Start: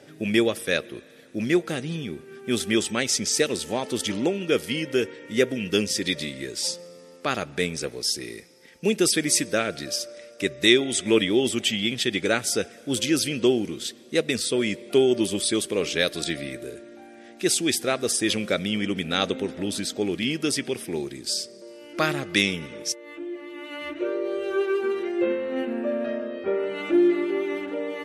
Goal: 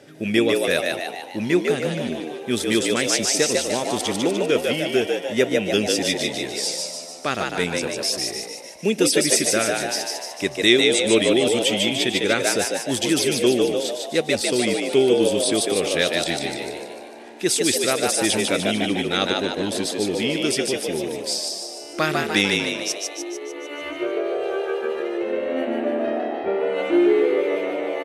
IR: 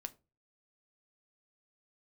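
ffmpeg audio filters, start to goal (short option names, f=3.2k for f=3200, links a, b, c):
-filter_complex "[0:a]asettb=1/sr,asplit=3[a][b][c];[a]atrim=end=24.304[d];[b]atrim=start=24.3:end=25.33,asetpts=PTS-STARTPTS,afade=t=in:d=0.004:c=qsin,afade=t=out:st=1.026:d=0.004:c=qsin,acompressor=threshold=-26dB:ratio=6[e];[c]atrim=start=25.326[f];[d][e]acrossfade=d=0.004:c1=hsin:c2=qsin[g];[g][f]acrossfade=d=0.004:c1=qsin:c2=hsin,asplit=9[h][i][j][k][l][m][n][o][p];[i]adelay=149,afreqshift=75,volume=-3dB[q];[j]adelay=298,afreqshift=150,volume=-8.2dB[r];[k]adelay=447,afreqshift=225,volume=-13.4dB[s];[l]adelay=596,afreqshift=300,volume=-18.6dB[t];[m]adelay=745,afreqshift=375,volume=-23.8dB[u];[n]adelay=894,afreqshift=450,volume=-29dB[v];[o]adelay=1043,afreqshift=525,volume=-34.2dB[w];[p]adelay=1192,afreqshift=600,volume=-39.3dB[x];[h][q][r][s][t][u][v][w][x]amix=inputs=9:normalize=0,volume=1.5dB"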